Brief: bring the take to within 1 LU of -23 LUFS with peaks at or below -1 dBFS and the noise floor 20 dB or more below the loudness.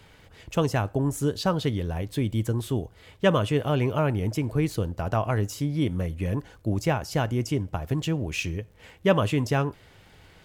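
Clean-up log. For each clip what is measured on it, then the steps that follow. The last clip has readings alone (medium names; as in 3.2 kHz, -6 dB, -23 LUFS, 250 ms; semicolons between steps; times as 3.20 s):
tick rate 36 per s; loudness -27.0 LUFS; peak level -8.5 dBFS; loudness target -23.0 LUFS
-> de-click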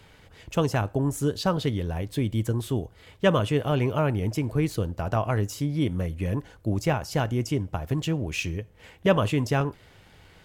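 tick rate 1.1 per s; loudness -27.0 LUFS; peak level -8.5 dBFS; loudness target -23.0 LUFS
-> trim +4 dB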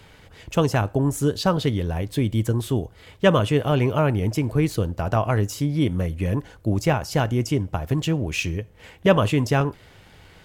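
loudness -23.0 LUFS; peak level -4.5 dBFS; noise floor -51 dBFS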